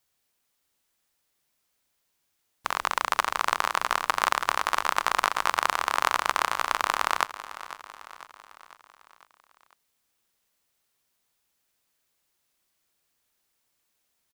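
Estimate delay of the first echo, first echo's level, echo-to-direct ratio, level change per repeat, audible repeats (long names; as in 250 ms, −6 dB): 500 ms, −15.0 dB, −13.5 dB, −5.5 dB, 4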